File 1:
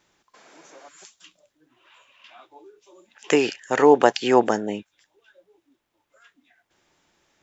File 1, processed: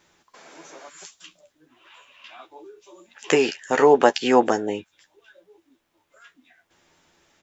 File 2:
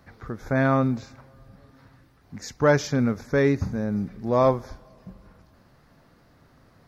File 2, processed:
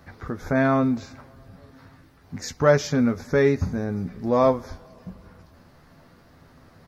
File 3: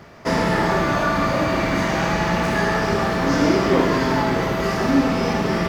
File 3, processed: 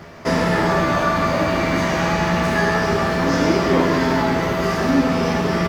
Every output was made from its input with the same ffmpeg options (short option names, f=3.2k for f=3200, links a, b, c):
-filter_complex "[0:a]asplit=2[a][b];[b]acompressor=threshold=-31dB:ratio=6,volume=-3dB[c];[a][c]amix=inputs=2:normalize=0,asplit=2[d][e];[e]adelay=12,volume=-7dB[f];[d][f]amix=inputs=2:normalize=0,volume=-1dB"